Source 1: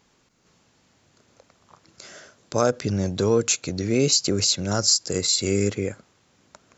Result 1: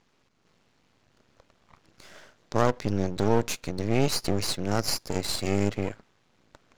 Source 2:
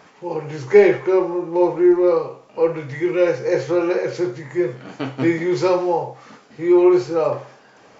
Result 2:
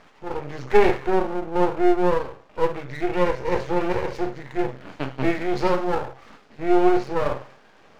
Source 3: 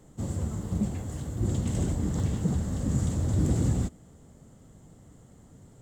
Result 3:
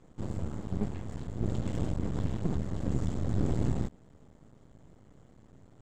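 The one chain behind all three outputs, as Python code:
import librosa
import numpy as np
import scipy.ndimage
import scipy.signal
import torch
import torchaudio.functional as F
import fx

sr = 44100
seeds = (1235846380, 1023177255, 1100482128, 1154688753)

y = scipy.signal.sosfilt(scipy.signal.butter(2, 4400.0, 'lowpass', fs=sr, output='sos'), x)
y = np.maximum(y, 0.0)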